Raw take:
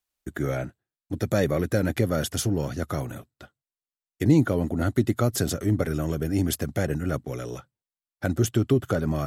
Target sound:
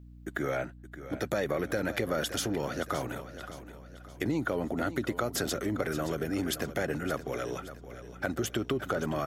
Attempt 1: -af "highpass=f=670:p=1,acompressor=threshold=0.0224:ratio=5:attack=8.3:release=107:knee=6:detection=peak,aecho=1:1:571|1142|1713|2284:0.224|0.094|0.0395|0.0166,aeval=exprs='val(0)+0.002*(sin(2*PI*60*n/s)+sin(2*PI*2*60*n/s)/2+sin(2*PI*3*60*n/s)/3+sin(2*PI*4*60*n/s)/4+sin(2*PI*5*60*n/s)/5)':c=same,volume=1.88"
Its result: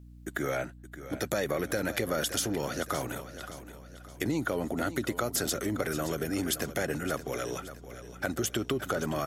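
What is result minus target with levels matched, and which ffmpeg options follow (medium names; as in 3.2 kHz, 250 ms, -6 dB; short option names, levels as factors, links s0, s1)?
8 kHz band +4.5 dB
-af "highpass=f=670:p=1,equalizer=f=10000:t=o:w=2:g=-9.5,acompressor=threshold=0.0224:ratio=5:attack=8.3:release=107:knee=6:detection=peak,aecho=1:1:571|1142|1713|2284:0.224|0.094|0.0395|0.0166,aeval=exprs='val(0)+0.002*(sin(2*PI*60*n/s)+sin(2*PI*2*60*n/s)/2+sin(2*PI*3*60*n/s)/3+sin(2*PI*4*60*n/s)/4+sin(2*PI*5*60*n/s)/5)':c=same,volume=1.88"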